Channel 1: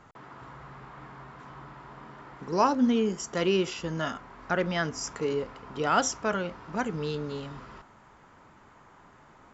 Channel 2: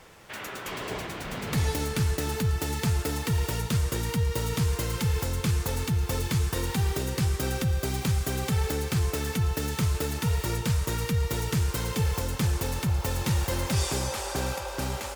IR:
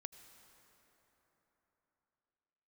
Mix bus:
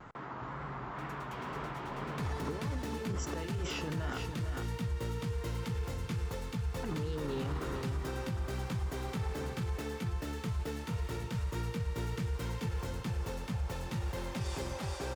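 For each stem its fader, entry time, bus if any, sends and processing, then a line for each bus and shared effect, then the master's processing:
-3.0 dB, 0.00 s, muted 4.18–6.83, send -8.5 dB, echo send -7 dB, negative-ratio compressor -36 dBFS, ratio -1; vibrato 2 Hz 81 cents
-8.5 dB, 0.65 s, no send, echo send -4 dB, three-band expander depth 40%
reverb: on, RT60 4.0 s, pre-delay 73 ms
echo: echo 0.452 s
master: LPF 2900 Hz 6 dB/oct; limiter -27.5 dBFS, peak gain reduction 8 dB

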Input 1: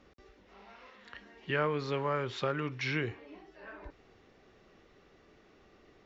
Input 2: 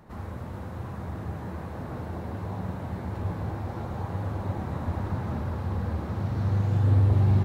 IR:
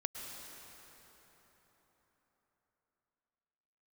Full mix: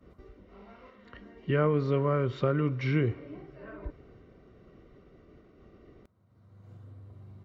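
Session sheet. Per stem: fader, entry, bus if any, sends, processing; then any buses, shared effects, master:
+1.0 dB, 0.00 s, send -19.5 dB, tilt -3.5 dB/oct; expander -51 dBFS
-15.5 dB, 0.00 s, no send, compressor 5:1, threshold -30 dBFS, peak gain reduction 12 dB; auto duck -22 dB, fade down 0.45 s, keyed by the first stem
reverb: on, RT60 4.4 s, pre-delay 98 ms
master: notch comb 850 Hz

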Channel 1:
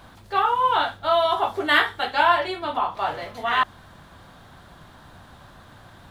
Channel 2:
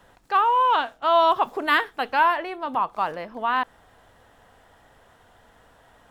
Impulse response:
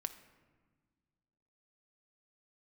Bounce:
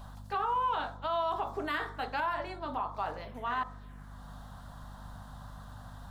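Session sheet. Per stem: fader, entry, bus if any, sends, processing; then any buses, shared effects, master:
-3.0 dB, 0.00 s, send -13.5 dB, envelope phaser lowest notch 320 Hz, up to 2800 Hz, full sweep at -23.5 dBFS; auto duck -14 dB, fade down 0.90 s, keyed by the second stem
-10.0 dB, 0.00 s, no send, de-hum 46.1 Hz, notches 29; hum 50 Hz, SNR 13 dB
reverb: on, RT60 1.5 s, pre-delay 5 ms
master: limiter -23.5 dBFS, peak gain reduction 10 dB

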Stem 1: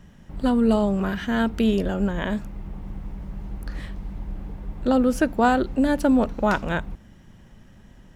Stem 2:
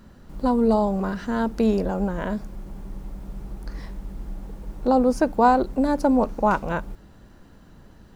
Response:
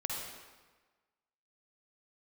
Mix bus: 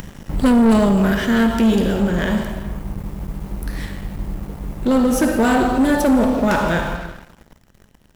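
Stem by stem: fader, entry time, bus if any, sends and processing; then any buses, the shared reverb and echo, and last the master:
+1.5 dB, 0.00 s, send -12 dB, upward compressor, threshold -44 dBFS; auto duck -15 dB, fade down 1.85 s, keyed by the second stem
-2.5 dB, 0.00 s, no send, high shelf 2700 Hz +4 dB; resonator bank D2 minor, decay 0.23 s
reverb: on, RT60 1.3 s, pre-delay 46 ms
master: high shelf 7900 Hz +10 dB; sample leveller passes 3

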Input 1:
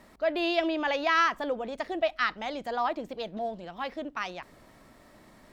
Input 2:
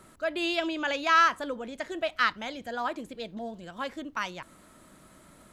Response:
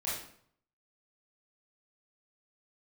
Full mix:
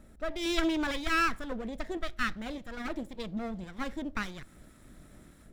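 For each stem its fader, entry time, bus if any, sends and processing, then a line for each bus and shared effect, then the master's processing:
-2.5 dB, 0.00 s, send -20 dB, Wiener smoothing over 41 samples; limiter -25 dBFS, peak gain reduction 11 dB; step gate "xx.xxx..x.x" 99 bpm
-9.5 dB, 0.00 s, no send, minimum comb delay 0.54 ms; AGC gain up to 15 dB; auto duck -9 dB, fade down 1.95 s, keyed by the first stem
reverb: on, RT60 0.60 s, pre-delay 20 ms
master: low shelf 110 Hz +12 dB

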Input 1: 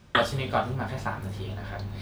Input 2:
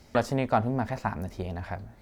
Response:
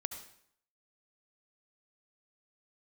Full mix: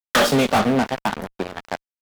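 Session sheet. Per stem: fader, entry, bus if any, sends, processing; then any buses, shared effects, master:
0.0 dB, 0.00 s, no send, auto duck -20 dB, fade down 1.25 s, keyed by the second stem
-6.0 dB, 2.4 ms, no send, high shelf 4000 Hz -6.5 dB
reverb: off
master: HPF 180 Hz 24 dB/oct; fuzz box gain 35 dB, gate -42 dBFS

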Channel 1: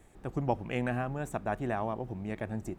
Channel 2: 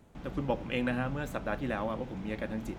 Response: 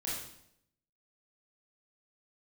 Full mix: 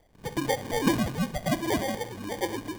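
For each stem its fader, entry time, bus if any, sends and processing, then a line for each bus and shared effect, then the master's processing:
-6.0 dB, 0.00 s, send -8 dB, time blur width 0.107 s; band shelf 820 Hz -9 dB 3 oct
0.0 dB, 0.00 s, send -13 dB, sine-wave speech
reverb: on, RT60 0.75 s, pre-delay 22 ms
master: bell 1600 Hz +12.5 dB 0.47 oct; sample-and-hold 33×

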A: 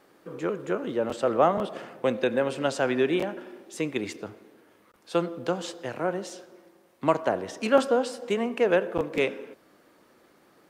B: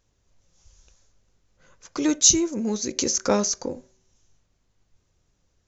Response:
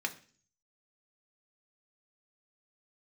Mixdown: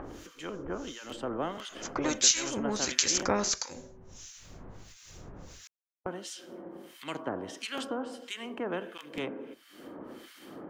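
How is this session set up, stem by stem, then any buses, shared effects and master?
-13.0 dB, 0.00 s, muted 3.5–6.06, no send, small resonant body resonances 280/3100 Hz, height 14 dB, ringing for 25 ms
+0.5 dB, 0.00 s, no send, dry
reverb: off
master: upward compressor, threshold -38 dBFS; harmonic tremolo 1.5 Hz, depth 100%, crossover 1500 Hz; spectral compressor 2:1

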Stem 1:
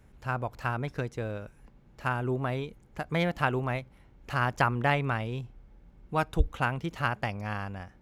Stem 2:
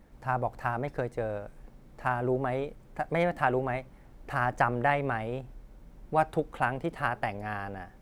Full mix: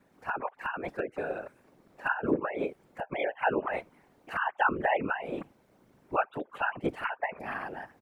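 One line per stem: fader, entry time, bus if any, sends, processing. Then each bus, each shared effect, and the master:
-2.0 dB, 0.00 s, no send, sine-wave speech; LPF 2300 Hz; whisperiser
-3.0 dB, 4.3 ms, no send, flipped gate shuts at -20 dBFS, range -32 dB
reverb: off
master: HPF 180 Hz 24 dB/oct; whisperiser

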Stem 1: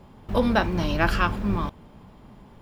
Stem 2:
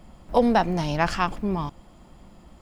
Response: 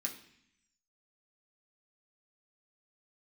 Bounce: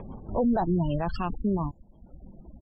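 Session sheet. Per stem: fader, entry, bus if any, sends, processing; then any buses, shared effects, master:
-3.5 dB, 0.00 s, no send, upward compressor, threshold -24 dBFS; rotary speaker horn 5.5 Hz; auto duck -18 dB, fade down 1.40 s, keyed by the second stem
-4.0 dB, 17 ms, no send, resonant high shelf 2500 Hz +6.5 dB, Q 1.5; reverb removal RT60 0.97 s; tilt shelf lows +9 dB, about 1300 Hz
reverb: off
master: spectral gate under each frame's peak -25 dB strong; limiter -18 dBFS, peak gain reduction 10.5 dB

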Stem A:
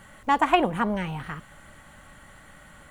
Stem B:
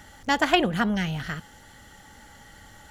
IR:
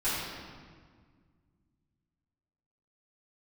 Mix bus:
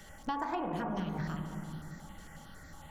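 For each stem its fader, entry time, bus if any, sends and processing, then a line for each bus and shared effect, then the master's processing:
-12.0 dB, 0.00 s, send -4 dB, LPF 1200 Hz 12 dB/oct
-2.5 dB, 0.00 s, no send, compressor, threshold -28 dBFS, peak gain reduction 13.5 dB; step phaser 11 Hz 270–3000 Hz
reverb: on, RT60 1.7 s, pre-delay 3 ms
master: compressor 4:1, threshold -33 dBFS, peak gain reduction 9.5 dB

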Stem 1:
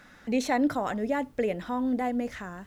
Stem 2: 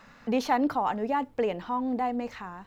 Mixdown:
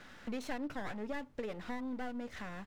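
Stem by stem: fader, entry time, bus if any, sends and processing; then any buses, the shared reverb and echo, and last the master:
-2.5 dB, 0.00 s, no send, Bessel low-pass 6200 Hz
-6.5 dB, 3.2 ms, polarity flipped, no send, EQ curve 200 Hz 0 dB, 400 Hz -19 dB, 630 Hz +4 dB; full-wave rectifier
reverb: off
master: compressor 3:1, threshold -40 dBFS, peak gain reduction 15 dB

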